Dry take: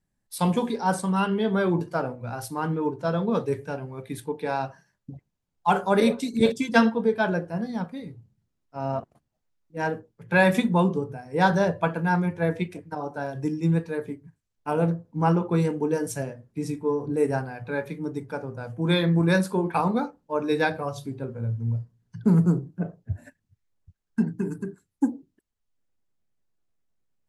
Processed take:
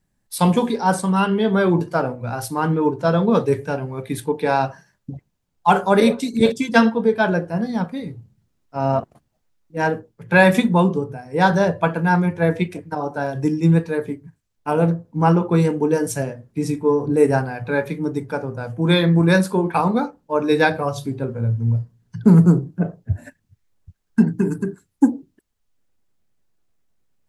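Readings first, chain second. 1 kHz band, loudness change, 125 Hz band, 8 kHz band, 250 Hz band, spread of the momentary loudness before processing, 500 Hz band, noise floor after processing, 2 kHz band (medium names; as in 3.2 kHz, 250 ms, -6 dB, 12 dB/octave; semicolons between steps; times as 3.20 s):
+6.0 dB, +6.5 dB, +7.0 dB, +6.5 dB, +6.5 dB, 14 LU, +6.5 dB, -71 dBFS, +6.0 dB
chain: gain riding within 3 dB 2 s; trim +6 dB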